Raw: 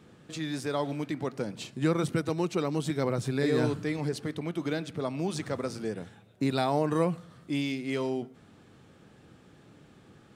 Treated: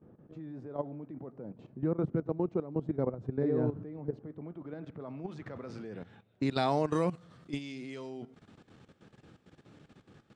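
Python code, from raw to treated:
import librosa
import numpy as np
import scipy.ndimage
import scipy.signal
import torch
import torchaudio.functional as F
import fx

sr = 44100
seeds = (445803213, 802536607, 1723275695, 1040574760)

y = fx.dynamic_eq(x, sr, hz=6900.0, q=1.5, threshold_db=-55.0, ratio=4.0, max_db=5)
y = fx.level_steps(y, sr, step_db=14)
y = fx.filter_sweep_lowpass(y, sr, from_hz=740.0, to_hz=7000.0, start_s=4.19, end_s=7.0, q=0.75)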